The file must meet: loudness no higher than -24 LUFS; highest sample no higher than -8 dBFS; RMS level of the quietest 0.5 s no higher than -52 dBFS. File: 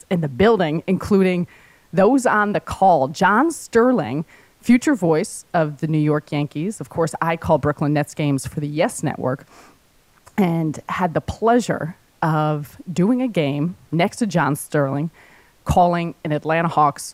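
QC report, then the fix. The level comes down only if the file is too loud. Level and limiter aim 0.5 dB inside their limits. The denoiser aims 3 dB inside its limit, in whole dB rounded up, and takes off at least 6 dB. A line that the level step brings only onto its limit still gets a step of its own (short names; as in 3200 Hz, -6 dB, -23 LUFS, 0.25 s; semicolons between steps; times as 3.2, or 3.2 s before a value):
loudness -19.5 LUFS: fail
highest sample -5.5 dBFS: fail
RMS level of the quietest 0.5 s -56 dBFS: OK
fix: gain -5 dB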